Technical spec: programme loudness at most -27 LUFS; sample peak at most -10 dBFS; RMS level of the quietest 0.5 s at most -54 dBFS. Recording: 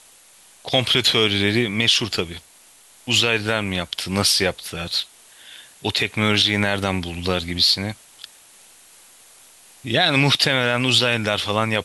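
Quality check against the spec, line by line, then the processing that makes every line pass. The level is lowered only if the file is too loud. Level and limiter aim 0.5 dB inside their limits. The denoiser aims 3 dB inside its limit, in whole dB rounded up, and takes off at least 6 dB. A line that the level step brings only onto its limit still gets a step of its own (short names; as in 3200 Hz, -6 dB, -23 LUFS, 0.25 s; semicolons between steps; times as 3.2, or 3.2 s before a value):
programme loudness -19.0 LUFS: fail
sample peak -5.0 dBFS: fail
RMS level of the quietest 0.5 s -50 dBFS: fail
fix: gain -8.5 dB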